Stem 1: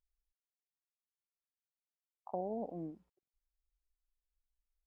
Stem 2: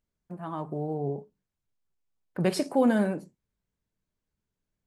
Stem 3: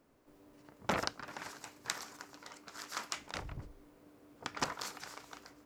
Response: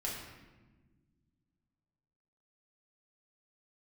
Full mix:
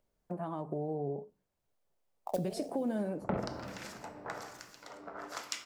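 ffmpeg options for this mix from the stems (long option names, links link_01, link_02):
-filter_complex "[0:a]equalizer=frequency=560:width_type=o:width=0.64:gain=10.5,acrusher=bits=4:mode=log:mix=0:aa=0.000001,volume=1.5dB,asplit=2[link_01][link_02];[link_02]volume=-21.5dB[link_03];[1:a]acompressor=threshold=-39dB:ratio=2.5,volume=0dB,asplit=2[link_04][link_05];[2:a]acrossover=split=1800[link_06][link_07];[link_06]aeval=exprs='val(0)*(1-1/2+1/2*cos(2*PI*1.1*n/s))':channel_layout=same[link_08];[link_07]aeval=exprs='val(0)*(1-1/2-1/2*cos(2*PI*1.1*n/s))':channel_layout=same[link_09];[link_08][link_09]amix=inputs=2:normalize=0,adelay=2400,volume=0dB,asplit=2[link_10][link_11];[link_11]volume=-5dB[link_12];[link_05]apad=whole_len=214630[link_13];[link_01][link_13]sidechaincompress=threshold=-54dB:ratio=8:attack=16:release=437[link_14];[3:a]atrim=start_sample=2205[link_15];[link_03][link_12]amix=inputs=2:normalize=0[link_16];[link_16][link_15]afir=irnorm=-1:irlink=0[link_17];[link_14][link_04][link_10][link_17]amix=inputs=4:normalize=0,equalizer=frequency=600:width=0.75:gain=10.5,acrossover=split=330|3000[link_18][link_19][link_20];[link_19]acompressor=threshold=-38dB:ratio=6[link_21];[link_18][link_21][link_20]amix=inputs=3:normalize=0"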